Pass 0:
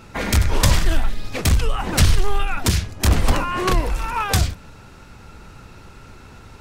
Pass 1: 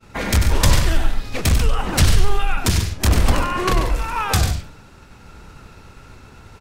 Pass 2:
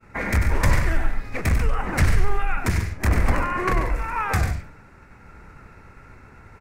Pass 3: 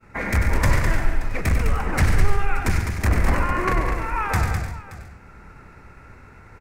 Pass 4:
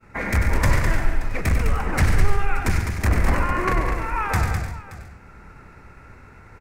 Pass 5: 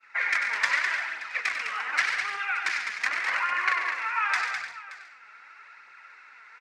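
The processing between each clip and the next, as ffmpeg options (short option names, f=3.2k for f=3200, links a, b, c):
-af "agate=range=-33dB:threshold=-39dB:ratio=3:detection=peak,aecho=1:1:96.21|139.9:0.398|0.282"
-af "highshelf=f=2.6k:t=q:w=3:g=-7,volume=-4dB"
-af "aecho=1:1:206|576:0.473|0.133"
-af anull
-af "flanger=delay=0.1:depth=4.8:regen=45:speed=0.85:shape=triangular,asuperpass=centerf=2700:order=4:qfactor=0.76,volume=8dB"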